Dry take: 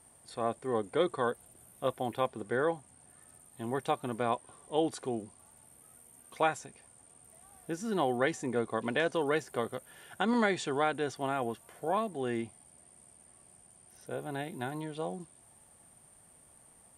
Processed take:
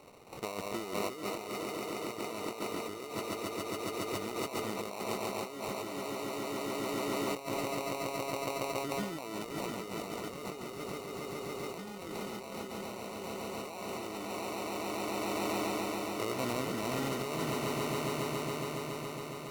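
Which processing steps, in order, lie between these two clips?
sample-rate reducer 1.9 kHz, jitter 0%; bass shelf 140 Hz -9.5 dB; on a send: echo with a slow build-up 121 ms, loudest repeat 5, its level -8 dB; on the sum: tape speed -13%; compressor with a negative ratio -38 dBFS, ratio -1

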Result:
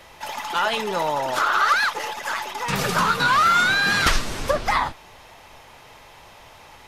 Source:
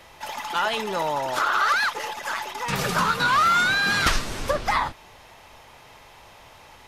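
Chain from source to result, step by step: flange 1.7 Hz, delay 1.5 ms, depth 6 ms, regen +83%; trim +6.5 dB

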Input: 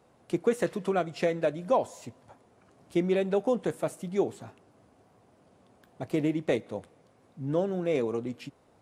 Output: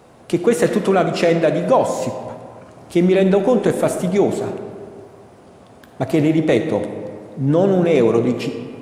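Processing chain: in parallel at -2.5 dB: compressor with a negative ratio -29 dBFS, ratio -0.5; on the sum: algorithmic reverb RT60 2.1 s, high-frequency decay 0.5×, pre-delay 15 ms, DRR 7 dB; trim +9 dB

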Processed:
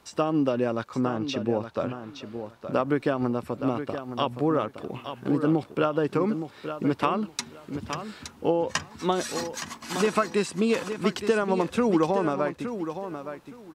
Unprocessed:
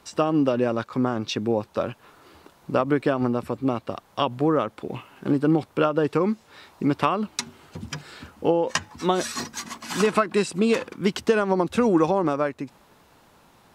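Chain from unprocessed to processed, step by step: 1.01–2.73 s: treble shelf 7.3 kHz -8.5 dB; on a send: feedback delay 868 ms, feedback 19%, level -9.5 dB; on the sum: trim -3 dB

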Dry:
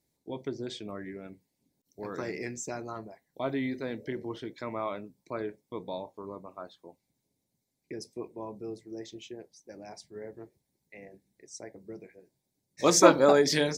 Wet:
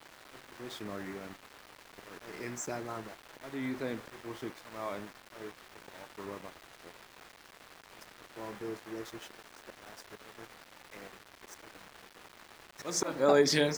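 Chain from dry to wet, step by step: slow attack 368 ms; band noise 280–2000 Hz -50 dBFS; small samples zeroed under -45 dBFS; trim -1 dB

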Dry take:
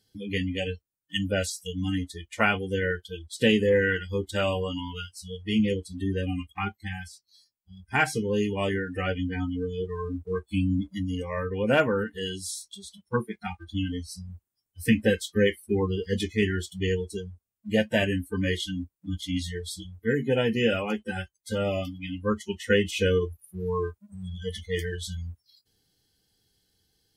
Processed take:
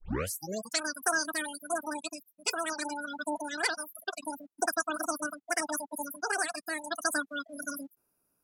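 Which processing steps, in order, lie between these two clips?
tape start-up on the opening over 2.59 s; resonant high shelf 5.3 kHz -12.5 dB, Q 3; wide varispeed 3.22×; trim -7 dB

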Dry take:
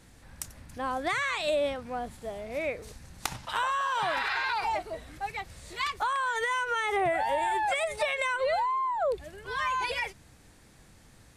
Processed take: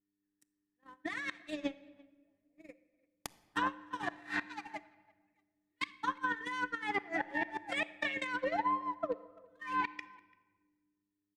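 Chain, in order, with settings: local Wiener filter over 9 samples; mains buzz 100 Hz, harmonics 4, -42 dBFS -3 dB/octave; tilt shelf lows -6.5 dB; comb 5.9 ms, depth 59%; small resonant body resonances 280/1800 Hz, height 18 dB, ringing for 65 ms; gate -23 dBFS, range -56 dB; 2.48–4.48 s: peaking EQ 2.8 kHz -7 dB 3 oct; compressor with a negative ratio -35 dBFS, ratio -1; inverted gate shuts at -21 dBFS, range -28 dB; low-pass that closes with the level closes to 2.9 kHz, closed at -29 dBFS; speakerphone echo 340 ms, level -25 dB; simulated room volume 1500 m³, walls mixed, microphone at 0.31 m

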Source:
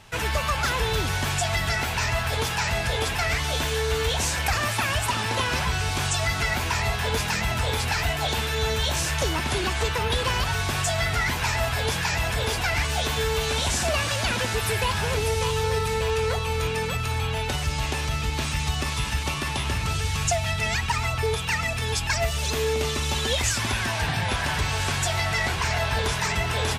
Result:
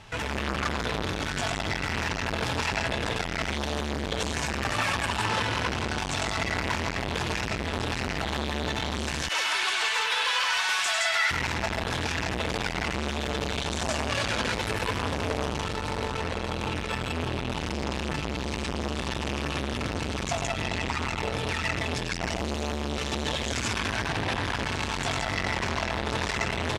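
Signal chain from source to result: 9.12–11.31 s: high-pass 1.2 kHz 12 dB/octave; peak limiter -19.5 dBFS, peak gain reduction 6 dB; distance through air 56 m; loudspeakers at several distances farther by 34 m -4 dB, 57 m -1 dB; transformer saturation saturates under 1.1 kHz; trim +2 dB

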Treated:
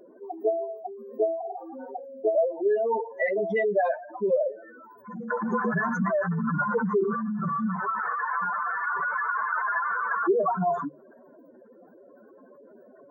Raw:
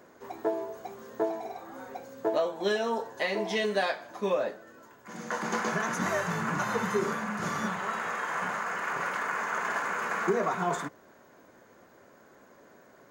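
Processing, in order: spectral contrast enhancement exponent 3.7; hum notches 50/100/150 Hz; wow and flutter 20 cents; trim +5 dB

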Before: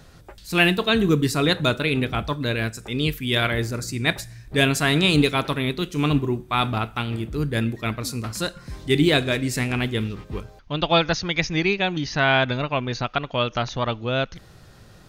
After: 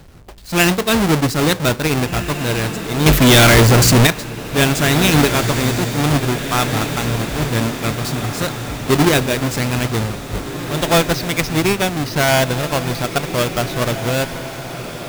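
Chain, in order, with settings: square wave that keeps the level; 3.06–4.07 s: waveshaping leveller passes 5; echo that smears into a reverb 1811 ms, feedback 54%, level -10 dB

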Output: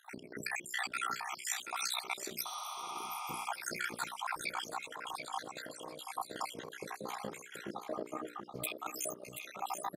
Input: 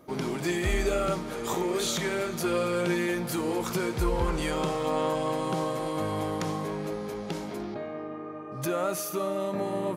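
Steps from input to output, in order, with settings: random holes in the spectrogram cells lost 76%; AM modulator 62 Hz, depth 70%; compressor with a negative ratio -42 dBFS, ratio -0.5; high-pass 340 Hz 6 dB/octave; hum notches 60/120/180/240/300/360/420/480/540/600 Hz; feedback delay 730 ms, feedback 19%, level -7.5 dB; spectral replace 2.49–3.42 s, 530–9500 Hz both; trim +3.5 dB

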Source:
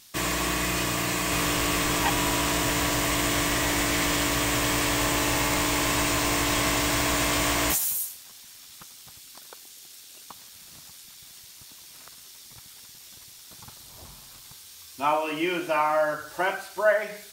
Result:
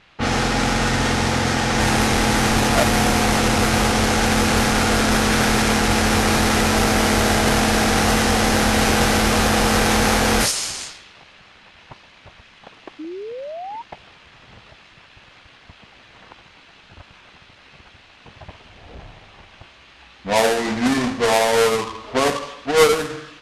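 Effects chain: square wave that keeps the level; level-controlled noise filter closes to 2.8 kHz, open at -17 dBFS; painted sound rise, 9.61–10.23 s, 400–1300 Hz -34 dBFS; tape speed -26%; trim +3 dB

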